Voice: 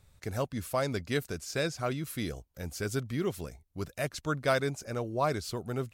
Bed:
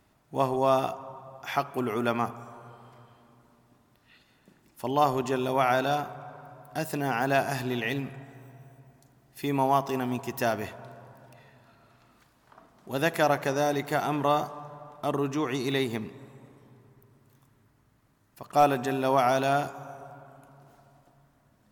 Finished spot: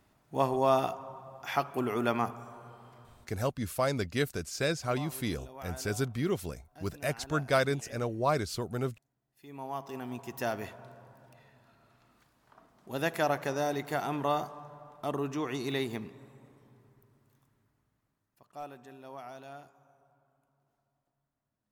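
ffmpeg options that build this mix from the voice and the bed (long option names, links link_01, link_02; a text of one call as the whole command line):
ffmpeg -i stem1.wav -i stem2.wav -filter_complex "[0:a]adelay=3050,volume=1dB[link_01];[1:a]volume=14.5dB,afade=type=out:start_time=3.1:duration=0.42:silence=0.105925,afade=type=in:start_time=9.46:duration=1.15:silence=0.149624,afade=type=out:start_time=16.89:duration=1.68:silence=0.141254[link_02];[link_01][link_02]amix=inputs=2:normalize=0" out.wav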